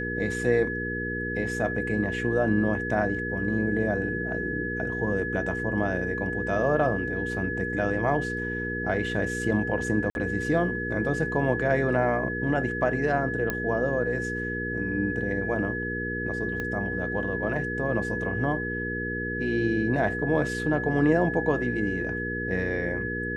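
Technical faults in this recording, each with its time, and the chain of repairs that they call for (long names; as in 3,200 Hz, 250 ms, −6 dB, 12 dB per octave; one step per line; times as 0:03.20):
mains hum 60 Hz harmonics 8 −33 dBFS
whistle 1,700 Hz −31 dBFS
0:10.10–0:10.15: drop-out 51 ms
0:13.50: click −13 dBFS
0:16.60: click −19 dBFS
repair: click removal
hum removal 60 Hz, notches 8
notch filter 1,700 Hz, Q 30
repair the gap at 0:10.10, 51 ms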